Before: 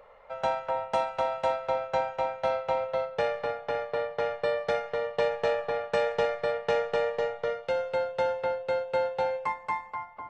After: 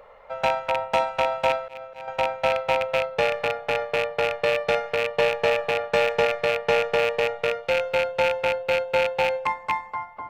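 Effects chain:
loose part that buzzes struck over −43 dBFS, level −19 dBFS
0:01.61–0:02.08: volume swells 390 ms
level +5 dB

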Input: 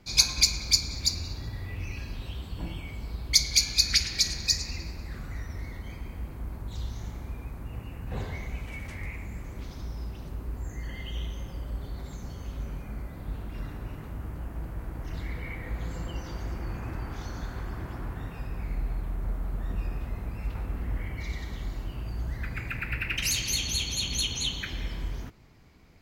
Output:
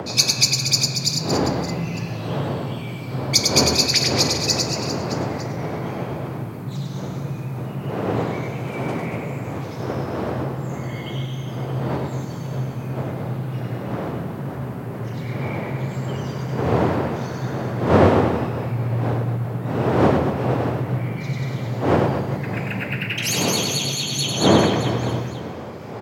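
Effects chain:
wind on the microphone 520 Hz −31 dBFS
upward compression, threshold −29 dBFS
frequency shifter +76 Hz
on a send: reverse bouncing-ball delay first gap 100 ms, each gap 1.3×, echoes 5
on the sum: level +3.5 dB

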